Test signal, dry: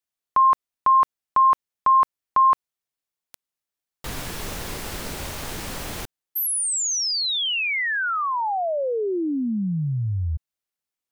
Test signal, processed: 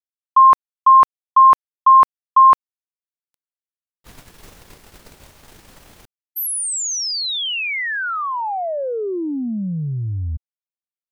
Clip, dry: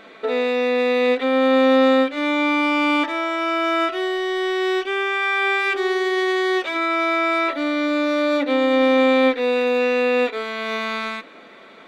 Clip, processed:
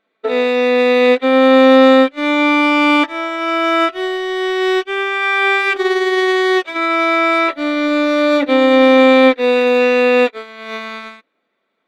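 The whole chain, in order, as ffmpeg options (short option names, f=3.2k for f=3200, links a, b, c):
-af "agate=range=-33dB:threshold=-21dB:ratio=3:release=41:detection=peak,volume=7dB"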